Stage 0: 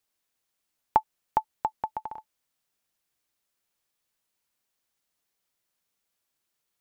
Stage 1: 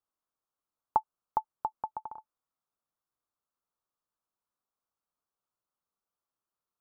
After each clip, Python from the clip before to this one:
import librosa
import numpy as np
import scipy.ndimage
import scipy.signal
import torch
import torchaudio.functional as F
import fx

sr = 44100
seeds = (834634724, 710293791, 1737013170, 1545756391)

y = fx.high_shelf_res(x, sr, hz=1600.0, db=-9.0, q=3.0)
y = y * librosa.db_to_amplitude(-8.0)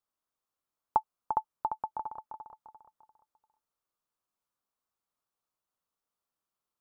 y = fx.echo_feedback(x, sr, ms=346, feedback_pct=36, wet_db=-7.0)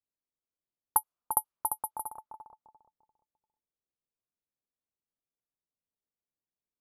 y = (np.kron(scipy.signal.resample_poly(x, 1, 4), np.eye(4)[0]) * 4)[:len(x)]
y = fx.env_lowpass(y, sr, base_hz=480.0, full_db=-25.0)
y = y * librosa.db_to_amplitude(-2.5)